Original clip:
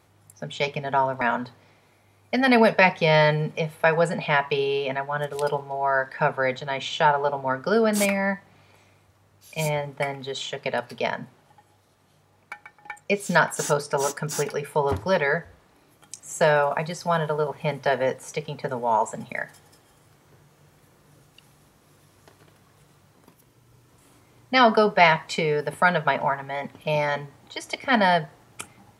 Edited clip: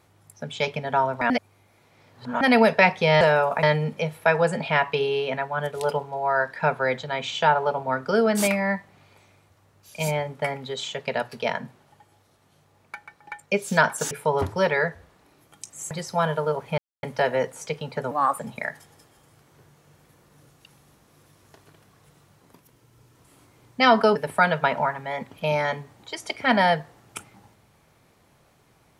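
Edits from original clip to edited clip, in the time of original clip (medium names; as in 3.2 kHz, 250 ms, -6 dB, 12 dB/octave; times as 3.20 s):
1.30–2.41 s: reverse
13.69–14.61 s: delete
16.41–16.83 s: move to 3.21 s
17.70 s: insert silence 0.25 s
18.78–19.13 s: speed 123%
24.89–25.59 s: delete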